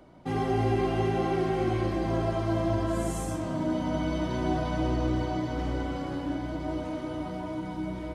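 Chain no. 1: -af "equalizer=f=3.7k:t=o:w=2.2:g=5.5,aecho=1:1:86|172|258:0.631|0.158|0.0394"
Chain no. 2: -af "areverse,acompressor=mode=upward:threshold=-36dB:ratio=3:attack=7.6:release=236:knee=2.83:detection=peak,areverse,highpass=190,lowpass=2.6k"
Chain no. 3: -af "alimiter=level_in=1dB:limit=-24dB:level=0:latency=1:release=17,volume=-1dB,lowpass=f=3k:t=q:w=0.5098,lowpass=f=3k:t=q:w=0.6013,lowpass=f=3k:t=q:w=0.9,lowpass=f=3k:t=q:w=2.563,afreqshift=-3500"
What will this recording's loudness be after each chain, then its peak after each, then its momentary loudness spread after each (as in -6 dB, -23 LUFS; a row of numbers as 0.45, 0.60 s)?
-28.0, -31.0, -29.5 LUFS; -13.0, -16.5, -20.0 dBFS; 6, 7, 3 LU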